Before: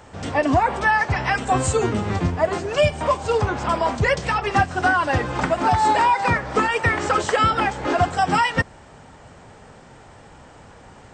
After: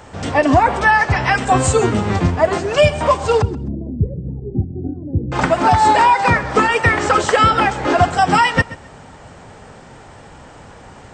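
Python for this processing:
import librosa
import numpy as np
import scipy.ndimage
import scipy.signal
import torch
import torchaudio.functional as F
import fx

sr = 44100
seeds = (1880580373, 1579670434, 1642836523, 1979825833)

y = fx.cheby2_lowpass(x, sr, hz=1100.0, order=4, stop_db=60, at=(3.42, 5.32))
y = fx.echo_feedback(y, sr, ms=130, feedback_pct=23, wet_db=-18.0)
y = F.gain(torch.from_numpy(y), 5.5).numpy()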